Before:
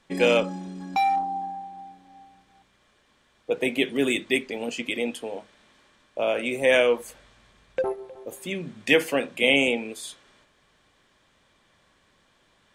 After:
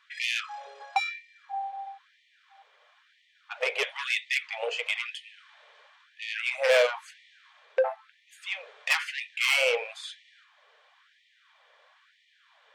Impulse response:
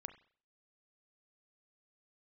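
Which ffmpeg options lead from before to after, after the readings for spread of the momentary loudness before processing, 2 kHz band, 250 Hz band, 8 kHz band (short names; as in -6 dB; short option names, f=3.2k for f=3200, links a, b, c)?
18 LU, -1.5 dB, under -35 dB, -2.0 dB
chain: -af "lowpass=3.7k,asoftclip=type=tanh:threshold=-20.5dB,flanger=delay=1.3:depth=2.3:regen=-74:speed=1.4:shape=triangular,afftfilt=real='re*gte(b*sr/1024,390*pow(1800/390,0.5+0.5*sin(2*PI*1*pts/sr)))':imag='im*gte(b*sr/1024,390*pow(1800/390,0.5+0.5*sin(2*PI*1*pts/sr)))':win_size=1024:overlap=0.75,volume=8.5dB"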